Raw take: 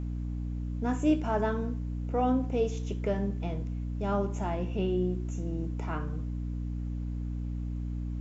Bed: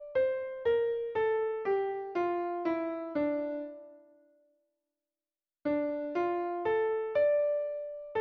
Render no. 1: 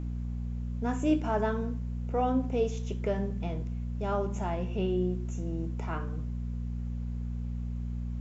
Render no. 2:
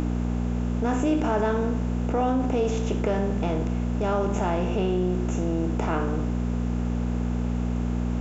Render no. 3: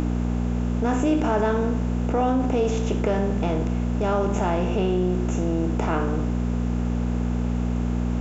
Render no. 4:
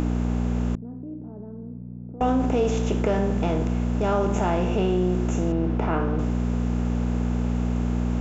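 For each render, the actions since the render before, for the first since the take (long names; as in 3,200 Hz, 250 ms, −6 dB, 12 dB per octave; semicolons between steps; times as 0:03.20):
hum removal 50 Hz, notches 7
compressor on every frequency bin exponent 0.6; envelope flattener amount 50%
level +2 dB
0:00.75–0:02.21: four-pole ladder band-pass 160 Hz, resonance 25%; 0:05.52–0:06.19: high-frequency loss of the air 200 metres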